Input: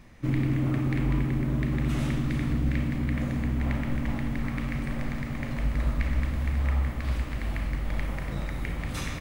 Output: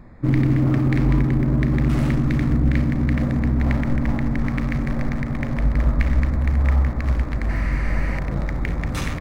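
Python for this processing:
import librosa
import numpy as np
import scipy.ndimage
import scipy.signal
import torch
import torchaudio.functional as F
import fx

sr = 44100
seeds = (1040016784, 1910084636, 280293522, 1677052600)

y = fx.wiener(x, sr, points=15)
y = fx.spec_repair(y, sr, seeds[0], start_s=7.52, length_s=0.64, low_hz=840.0, high_hz=12000.0, source='after')
y = y * 10.0 ** (8.0 / 20.0)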